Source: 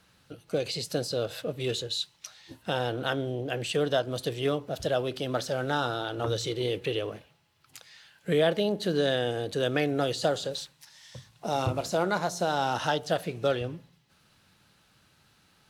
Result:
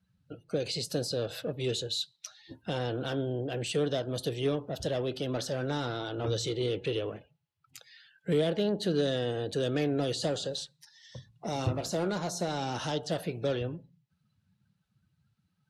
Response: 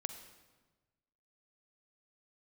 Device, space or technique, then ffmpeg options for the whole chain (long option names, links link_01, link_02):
one-band saturation: -filter_complex "[0:a]acrossover=split=500|3700[link_01][link_02][link_03];[link_02]asoftclip=type=tanh:threshold=-37.5dB[link_04];[link_01][link_04][link_03]amix=inputs=3:normalize=0,afftdn=noise_reduction=23:noise_floor=-54"